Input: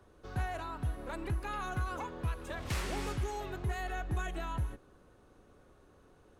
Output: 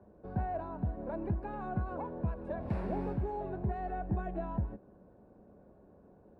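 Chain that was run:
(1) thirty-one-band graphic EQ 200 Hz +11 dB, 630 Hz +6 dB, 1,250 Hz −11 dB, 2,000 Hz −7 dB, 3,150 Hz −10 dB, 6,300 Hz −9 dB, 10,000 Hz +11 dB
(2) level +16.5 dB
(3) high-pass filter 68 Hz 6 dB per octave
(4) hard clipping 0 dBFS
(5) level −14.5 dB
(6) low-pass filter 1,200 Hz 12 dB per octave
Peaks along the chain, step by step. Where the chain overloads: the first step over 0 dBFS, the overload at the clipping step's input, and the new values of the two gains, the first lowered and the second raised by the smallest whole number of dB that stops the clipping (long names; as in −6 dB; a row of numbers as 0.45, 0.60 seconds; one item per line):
−22.0, −5.5, −5.5, −5.5, −20.0, −20.5 dBFS
no step passes full scale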